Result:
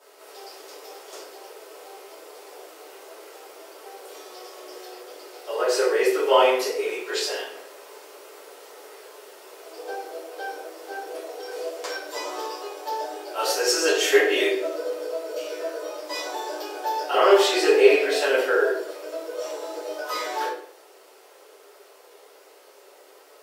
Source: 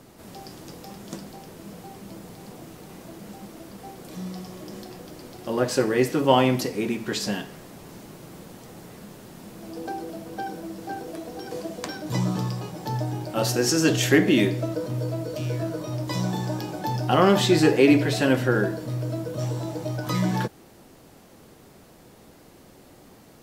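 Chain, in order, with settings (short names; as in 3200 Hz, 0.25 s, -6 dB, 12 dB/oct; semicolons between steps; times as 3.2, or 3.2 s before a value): steep high-pass 390 Hz 48 dB/oct; reverb RT60 0.60 s, pre-delay 3 ms, DRR -11.5 dB; gain -8.5 dB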